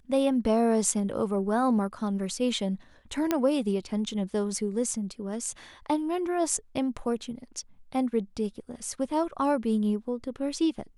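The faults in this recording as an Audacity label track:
3.310000	3.310000	click −11 dBFS

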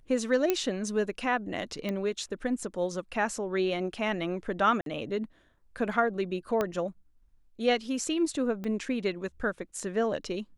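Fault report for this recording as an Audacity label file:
0.500000	0.500000	click −11 dBFS
1.890000	1.890000	click −19 dBFS
4.810000	4.860000	drop-out 52 ms
6.610000	6.610000	click −15 dBFS
8.640000	8.640000	click −24 dBFS

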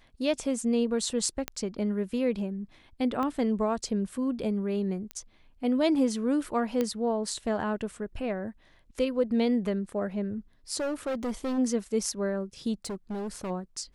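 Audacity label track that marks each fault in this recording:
1.480000	1.480000	click −14 dBFS
3.230000	3.230000	click −20 dBFS
5.110000	5.110000	click −21 dBFS
6.810000	6.810000	click −15 dBFS
10.770000	11.590000	clipping −27.5 dBFS
12.850000	13.510000	clipping −31 dBFS

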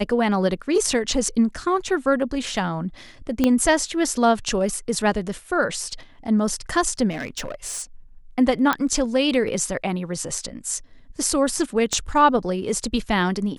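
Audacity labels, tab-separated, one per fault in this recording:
3.440000	3.440000	click −6 dBFS
7.100000	7.830000	clipping −25 dBFS
8.730000	8.730000	click −7 dBFS
11.930000	11.930000	click −11 dBFS

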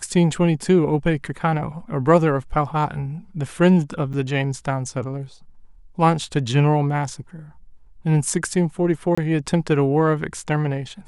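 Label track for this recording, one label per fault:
4.130000	4.140000	drop-out 7.3 ms
9.150000	9.180000	drop-out 25 ms

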